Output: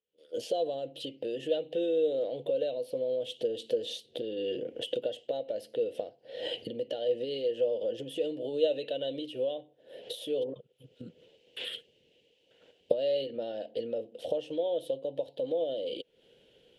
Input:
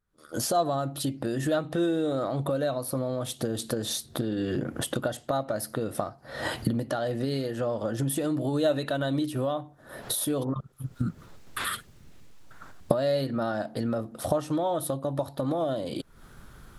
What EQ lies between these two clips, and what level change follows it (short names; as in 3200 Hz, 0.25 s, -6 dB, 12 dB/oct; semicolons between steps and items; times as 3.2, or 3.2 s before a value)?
double band-pass 1200 Hz, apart 2.6 oct; +6.0 dB